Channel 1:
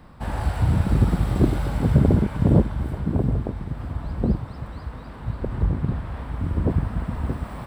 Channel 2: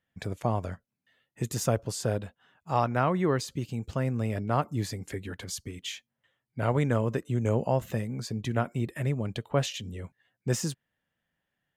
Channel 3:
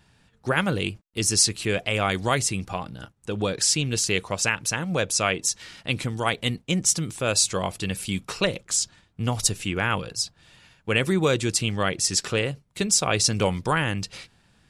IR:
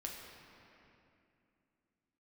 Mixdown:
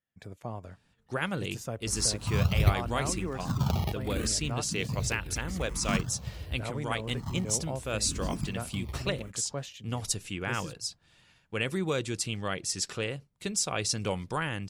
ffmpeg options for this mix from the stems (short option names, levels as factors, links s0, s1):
-filter_complex "[0:a]equalizer=f=840:w=1.9:g=-11.5,acrusher=samples=29:mix=1:aa=0.000001:lfo=1:lforange=29:lforate=0.57,asplit=2[s0][s1];[s1]afreqshift=-0.8[s2];[s0][s2]amix=inputs=2:normalize=1,adelay=1650,volume=0.708[s3];[1:a]volume=0.299,asplit=2[s4][s5];[2:a]adelay=650,volume=0.376[s6];[s5]apad=whole_len=410802[s7];[s3][s7]sidechaincompress=threshold=0.00631:ratio=8:attack=11:release=285[s8];[s8][s4][s6]amix=inputs=3:normalize=0"